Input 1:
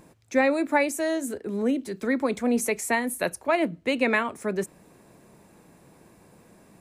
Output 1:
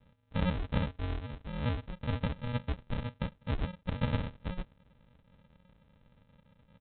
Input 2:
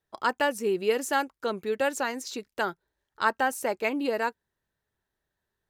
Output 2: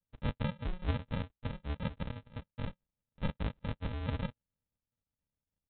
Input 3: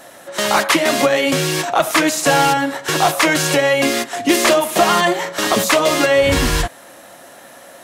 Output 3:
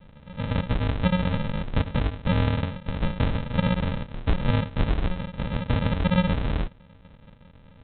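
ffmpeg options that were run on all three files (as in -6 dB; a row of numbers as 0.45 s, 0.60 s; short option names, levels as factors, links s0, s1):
-af "aemphasis=mode=production:type=50kf,aresample=8000,acrusher=samples=22:mix=1:aa=0.000001,aresample=44100,volume=0.376"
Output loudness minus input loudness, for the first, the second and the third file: -10.5 LU, -11.0 LU, -11.5 LU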